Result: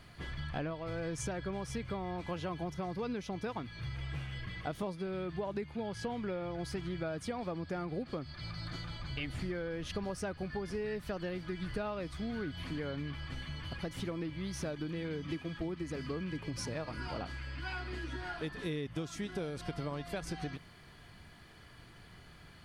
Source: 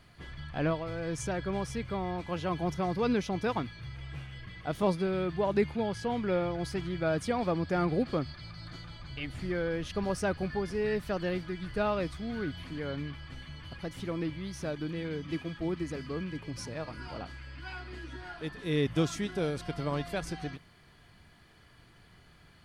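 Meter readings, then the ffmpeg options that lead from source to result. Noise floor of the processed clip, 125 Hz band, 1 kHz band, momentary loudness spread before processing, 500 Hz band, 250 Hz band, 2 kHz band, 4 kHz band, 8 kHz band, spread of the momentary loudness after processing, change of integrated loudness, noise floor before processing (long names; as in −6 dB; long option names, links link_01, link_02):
−56 dBFS, −4.0 dB, −6.5 dB, 14 LU, −7.0 dB, −5.5 dB, −4.0 dB, −2.5 dB, −2.5 dB, 5 LU, −6.0 dB, −59 dBFS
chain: -af "acompressor=threshold=-37dB:ratio=12,volume=3dB"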